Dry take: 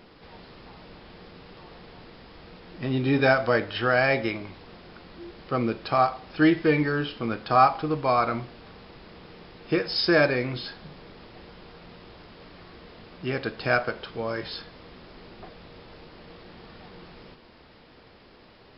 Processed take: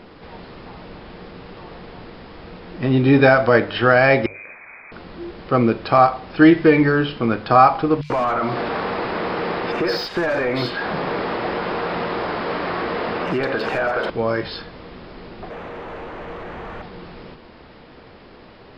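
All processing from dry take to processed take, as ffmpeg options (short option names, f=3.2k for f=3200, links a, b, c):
-filter_complex "[0:a]asettb=1/sr,asplit=3[a][b][c];[a]atrim=end=4.264[d];[b]atrim=start=4.26:end=4.92,asetpts=PTS-STARTPTS,afade=t=in:d=0.004:c=qsin,afade=t=out:st=0.656:d=0.004:c=qsin,highpass=f=190:w=0.5412,highpass=f=190:w=1.3066,acompressor=threshold=-39dB:ratio=12:attack=3.2:release=140:knee=1:detection=peak,lowpass=f=2.3k:t=q:w=0.5098,lowpass=f=2.3k:t=q:w=0.6013,lowpass=f=2.3k:t=q:w=0.9,lowpass=f=2.3k:t=q:w=2.563,afreqshift=-2700[e];[c]atrim=start=4.916[f];[d][e]acrossfade=d=0.004:c1=hsin:c2=qsin[g];[g][f]acrossfade=d=0.004:c1=qsin:c2=hsin,asettb=1/sr,asplit=3[h][i][j];[h]atrim=end=8.014[k];[i]atrim=start=8.01:end=14.1,asetpts=PTS-STARTPTS,afade=t=in:d=0.004:c=qsin,afade=t=out:st=6.086:d=0.004:c=qsin,asplit=2[l][m];[m]highpass=f=720:p=1,volume=27dB,asoftclip=type=tanh:threshold=-7dB[n];[l][n]amix=inputs=2:normalize=0,lowpass=f=1.9k:p=1,volume=-6dB,acompressor=threshold=-27dB:ratio=10:attack=3.2:release=140:knee=1:detection=peak,acrossover=split=3100[o][p];[o]adelay=90[q];[q][p]amix=inputs=2:normalize=0,atrim=end_sample=268569[r];[j]atrim=start=14.096[s];[k][r]acrossfade=d=0.004:c1=hsin:c2=qsin[t];[t][s]acrossfade=d=0.004:c1=qsin:c2=hsin,asettb=1/sr,asplit=3[u][v][w];[u]atrim=end=15.504[x];[v]atrim=start=15.5:end=16.82,asetpts=PTS-STARTPTS,afade=t=in:d=0.004:c=qsin,afade=t=out:st=1.316:d=0.004:c=qsin,lowpass=2.9k,asubboost=boost=8:cutoff=110,asplit=2[y][z];[z]highpass=f=720:p=1,volume=23dB,asoftclip=type=tanh:threshold=-32.5dB[aa];[y][aa]amix=inputs=2:normalize=0,lowpass=f=1.4k:p=1,volume=-6dB[ab];[w]atrim=start=16.816[ac];[x][ab]acrossfade=d=0.004:c1=hsin:c2=qsin[ad];[ad][ac]acrossfade=d=0.004:c1=qsin:c2=hsin,highshelf=f=4.1k:g=-11.5,bandreject=f=50:t=h:w=6,bandreject=f=100:t=h:w=6,bandreject=f=150:t=h:w=6,alimiter=level_in=10.5dB:limit=-1dB:release=50:level=0:latency=1,volume=-1dB"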